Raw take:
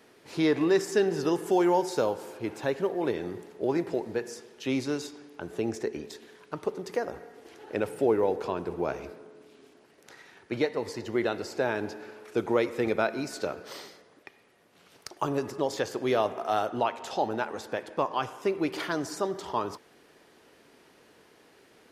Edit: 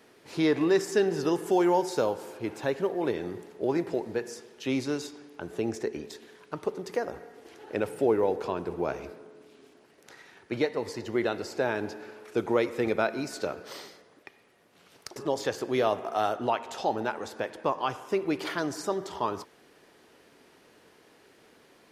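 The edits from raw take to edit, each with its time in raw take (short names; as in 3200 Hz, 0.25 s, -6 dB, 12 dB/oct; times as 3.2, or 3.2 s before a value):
15.16–15.49 cut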